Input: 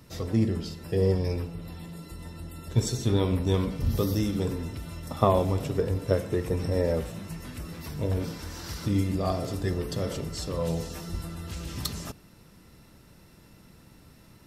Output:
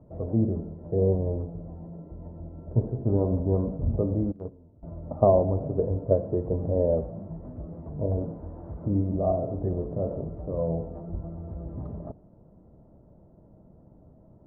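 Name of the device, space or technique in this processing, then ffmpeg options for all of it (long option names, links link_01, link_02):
under water: -filter_complex "[0:a]lowpass=frequency=790:width=0.5412,lowpass=frequency=790:width=1.3066,equalizer=frequency=630:width_type=o:width=0.32:gain=8.5,asettb=1/sr,asplit=3[link_01][link_02][link_03];[link_01]atrim=end=4.324[link_04];[link_02]atrim=start=4.32:end=4.83,asetpts=PTS-STARTPTS,afade=type=in:duration=0.004:curve=qsin,afade=type=out:start_time=0.506:duration=0.004:curve=qsin,agate=range=-20dB:threshold=-24dB:ratio=16:detection=peak[link_05];[link_03]atrim=start=4.826[link_06];[link_04][link_05]acrossfade=duration=0.004:curve1=hsin:curve2=qsin[link_07];[link_07][link_06]acrossfade=duration=0.004:curve1=qsin:curve2=hsin"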